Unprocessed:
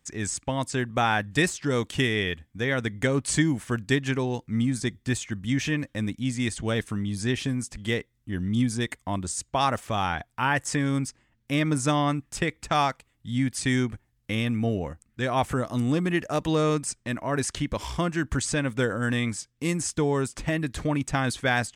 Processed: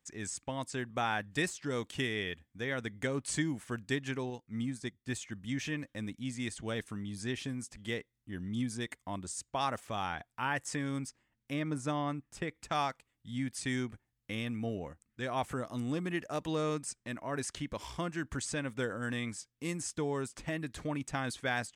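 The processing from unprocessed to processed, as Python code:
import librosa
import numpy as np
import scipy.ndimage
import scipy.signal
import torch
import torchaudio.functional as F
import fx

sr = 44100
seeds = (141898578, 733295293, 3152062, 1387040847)

y = fx.upward_expand(x, sr, threshold_db=-39.0, expansion=1.5, at=(4.3, 5.09))
y = fx.high_shelf(y, sr, hz=2200.0, db=-7.0, at=(11.53, 12.55))
y = fx.low_shelf(y, sr, hz=110.0, db=-7.0)
y = y * librosa.db_to_amplitude(-9.0)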